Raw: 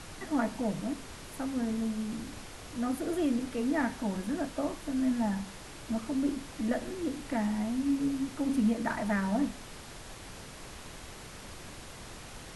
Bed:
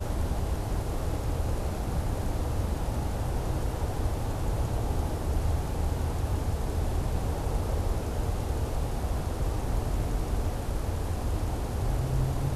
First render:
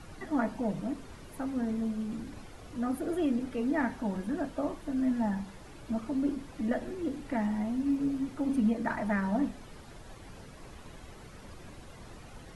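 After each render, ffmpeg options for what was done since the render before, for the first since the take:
-af "afftdn=nr=10:nf=-47"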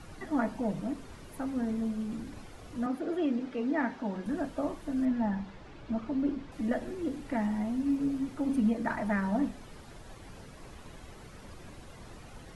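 -filter_complex "[0:a]asettb=1/sr,asplit=3[a][b][c];[a]atrim=end=2.864[d];[b]atrim=start=2.86:end=4.26,asetpts=PTS-STARTPTS,afade=t=in:d=0.004:c=qsin,afade=t=out:st=1.396:d=0.004:c=qsin,acrossover=split=160 6200:gain=0.178 1 0.126[e][f][g];[e][f][g]amix=inputs=3:normalize=0[h];[c]atrim=start=4.256[i];[d][h]acrossfade=d=0.004:c1=hsin:c2=qsin[j];[j][i]acrossfade=d=0.004:c1=qsin:c2=hsin,asettb=1/sr,asplit=3[k][l][m];[k]atrim=end=5.054[n];[l]atrim=start=5.05:end=6.52,asetpts=PTS-STARTPTS,afade=t=in:d=0.004:c=qsin,afade=t=out:st=1.466:d=0.004:c=qsin,lowpass=4.3k[o];[m]atrim=start=6.516[p];[n][o]acrossfade=d=0.004:c1=hsin:c2=qsin[q];[q][p]acrossfade=d=0.004:c1=qsin:c2=hsin"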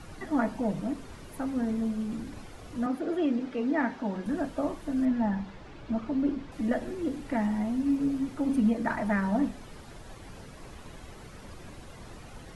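-af "volume=2.5dB"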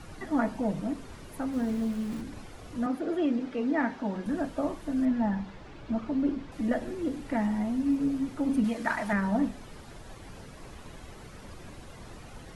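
-filter_complex "[0:a]asplit=3[a][b][c];[a]afade=t=out:st=1.52:d=0.02[d];[b]aeval=exprs='val(0)*gte(abs(val(0)),0.00794)':c=same,afade=t=in:st=1.52:d=0.02,afade=t=out:st=2.2:d=0.02[e];[c]afade=t=in:st=2.2:d=0.02[f];[d][e][f]amix=inputs=3:normalize=0,asettb=1/sr,asplit=3[g][h][i];[g]atrim=end=8.644[j];[h]atrim=start=8.64:end=9.13,asetpts=PTS-STARTPTS,afade=t=in:d=0.004:c=qsin,afade=t=out:st=0.486:d=0.004:c=qsin,tiltshelf=f=800:g=-6[k];[i]atrim=start=9.126[l];[j][k]acrossfade=d=0.004:c1=hsin:c2=qsin[m];[m][l]acrossfade=d=0.004:c1=qsin:c2=hsin"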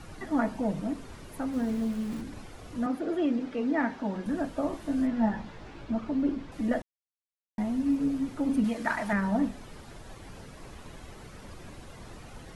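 -filter_complex "[0:a]asettb=1/sr,asplit=3[a][b][c];[a]atrim=end=4.714[d];[b]atrim=start=4.71:end=5.85,asetpts=PTS-STARTPTS,afade=t=in:d=0.004:c=qsin,afade=t=out:st=1.136:d=0.004:c=qsin,asplit=2[e][f];[f]adelay=18,volume=-3.5dB[g];[e][g]amix=inputs=2:normalize=0,atrim=end_sample=50274[h];[c]atrim=start=5.846[i];[d][h]acrossfade=d=0.004:c1=hsin:c2=qsin[j];[j][i]acrossfade=d=0.004:c1=qsin:c2=hsin,asplit=3[k][l][m];[k]atrim=end=6.82,asetpts=PTS-STARTPTS,afade=t=out:st=6.816:d=0.004:c=hsin[n];[l]atrim=start=6.82:end=7.58,asetpts=PTS-STARTPTS,volume=0[o];[m]atrim=start=7.58,asetpts=PTS-STARTPTS,afade=t=in:d=0.004:c=hsin[p];[n][o][p]concat=n=3:v=0:a=1"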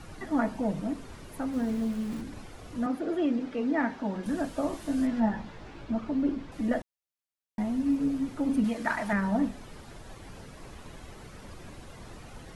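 -filter_complex "[0:a]asettb=1/sr,asplit=3[a][b][c];[a]atrim=end=4.234[d];[b]atrim=start=4.23:end=5.2,asetpts=PTS-STARTPTS,afade=t=in:d=0.004:c=qsin,afade=t=out:st=0.966:d=0.004:c=qsin,highshelf=f=3.9k:g=7.5[e];[c]atrim=start=5.196[f];[d][e]acrossfade=d=0.004:c1=hsin:c2=qsin[g];[g][f]acrossfade=d=0.004:c1=qsin:c2=hsin"

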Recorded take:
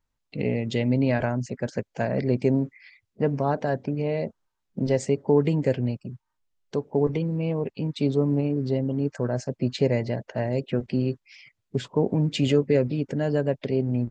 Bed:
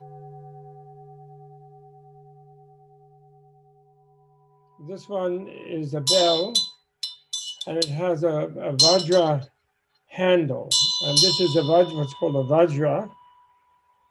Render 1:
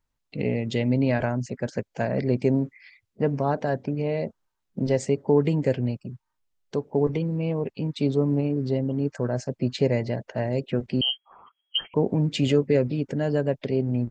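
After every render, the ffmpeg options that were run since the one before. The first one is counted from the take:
-filter_complex "[0:a]asettb=1/sr,asplit=3[a][b][c];[a]atrim=end=11.014[d];[b]atrim=start=11.01:end=11.94,asetpts=PTS-STARTPTS,afade=t=in:d=0.004:c=qsin,afade=t=out:st=0.926:d=0.004:c=qsin,lowpass=f=2.8k:t=q:w=0.5098,lowpass=f=2.8k:t=q:w=0.6013,lowpass=f=2.8k:t=q:w=0.9,lowpass=f=2.8k:t=q:w=2.563,afreqshift=-3300[e];[c]atrim=start=11.936[f];[d][e]acrossfade=d=0.004:c1=hsin:c2=qsin[g];[g][f]acrossfade=d=0.004:c1=qsin:c2=hsin"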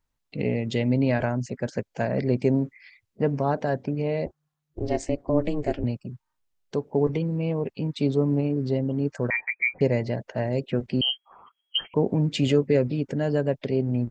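-filter_complex "[0:a]asettb=1/sr,asplit=3[a][b][c];[a]atrim=end=4.264[d];[b]atrim=start=4.26:end=5.84,asetpts=PTS-STARTPTS,afade=t=in:d=0.004:c=qsin,afade=t=out:st=1.576:d=0.004:c=qsin,aeval=exprs='val(0)*sin(2*PI*150*n/s)':c=same[e];[c]atrim=start=5.836[f];[d][e]acrossfade=d=0.004:c1=hsin:c2=qsin[g];[g][f]acrossfade=d=0.004:c1=qsin:c2=hsin,asettb=1/sr,asplit=3[h][i][j];[h]atrim=end=9.304[k];[i]atrim=start=9.3:end=9.81,asetpts=PTS-STARTPTS,afade=t=in:d=0.004:c=qsin,afade=t=out:st=0.506:d=0.004:c=qsin,lowpass=f=2.1k:t=q:w=0.5098,lowpass=f=2.1k:t=q:w=0.6013,lowpass=f=2.1k:t=q:w=0.9,lowpass=f=2.1k:t=q:w=2.563,afreqshift=-2500[l];[j]atrim=start=9.806[m];[k][l]acrossfade=d=0.004:c1=hsin:c2=qsin[n];[n][m]acrossfade=d=0.004:c1=qsin:c2=hsin"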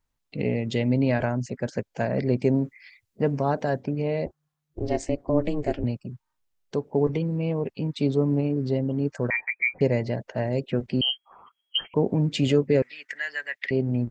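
-filter_complex "[0:a]asettb=1/sr,asplit=3[a][b][c];[a]atrim=end=2.644[d];[b]atrim=start=2.64:end=3.8,asetpts=PTS-STARTPTS,afade=t=in:d=0.004:c=qsin,afade=t=out:st=1.156:d=0.004:c=qsin,highshelf=f=5k:g=5.5[e];[c]atrim=start=3.796[f];[d][e]acrossfade=d=0.004:c1=hsin:c2=qsin[g];[g][f]acrossfade=d=0.004:c1=qsin:c2=hsin,asettb=1/sr,asplit=3[h][i][j];[h]atrim=end=12.824[k];[i]atrim=start=12.82:end=13.71,asetpts=PTS-STARTPTS,afade=t=in:d=0.004:c=qsin,afade=t=out:st=0.886:d=0.004:c=qsin,highpass=f=1.9k:t=q:w=10[l];[j]atrim=start=13.706[m];[k][l]acrossfade=d=0.004:c1=hsin:c2=qsin[n];[n][m]acrossfade=d=0.004:c1=qsin:c2=hsin"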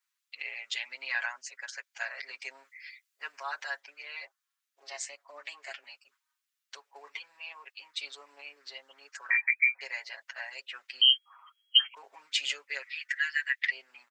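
-af "highpass=f=1.3k:w=0.5412,highpass=f=1.3k:w=1.3066,aecho=1:1:7.3:0.95"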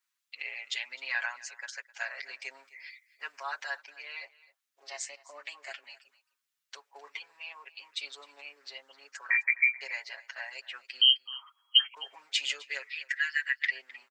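-af "aecho=1:1:259:0.1"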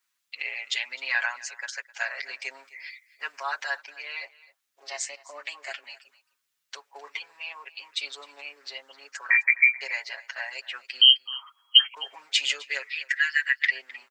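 -af "volume=6dB"

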